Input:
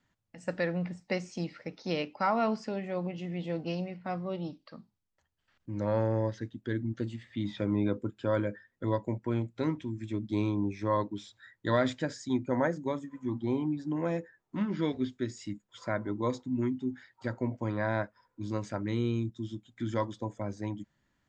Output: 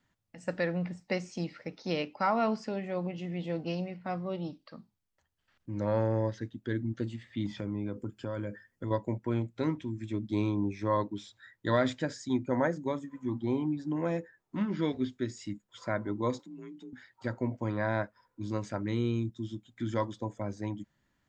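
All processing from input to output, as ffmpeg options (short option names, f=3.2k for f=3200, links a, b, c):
-filter_complex "[0:a]asettb=1/sr,asplit=3[a][b][c];[a]atrim=end=7.464[d];[b]atrim=start=7.46:end=8.91,asetpts=PTS-STARTPTS,afade=t=in:d=0.004:c=qsin,afade=t=out:st=1.446:d=0.004:c=qsin,asuperstop=centerf=3800:order=4:qfactor=7,acompressor=threshold=-35dB:ratio=3:attack=3.2:release=140:knee=1:detection=peak,bass=f=250:g=4,treble=f=4k:g=5[e];[c]atrim=start=8.906[f];[d][e]acrossfade=d=0.004:c1=hsin:c2=qsin[g];[g][f]acrossfade=d=0.004:c1=qsin:c2=hsin,asettb=1/sr,asplit=3[h][i][j];[h]atrim=end=16.394[k];[i]atrim=start=16.39:end=16.93,asetpts=PTS-STARTPTS,afade=t=in:d=0.004:c=qsin,afade=t=out:st=0.536:d=0.004:c=qsin,tiltshelf=f=1.3k:g=-4.5,acompressor=threshold=-48dB:ratio=2.5:attack=3.2:release=140:knee=1:detection=peak,afreqshift=42[l];[j]atrim=start=16.926[m];[k][l]acrossfade=d=0.004:c1=hsin:c2=qsin[n];[n][m]acrossfade=d=0.004:c1=qsin:c2=hsin"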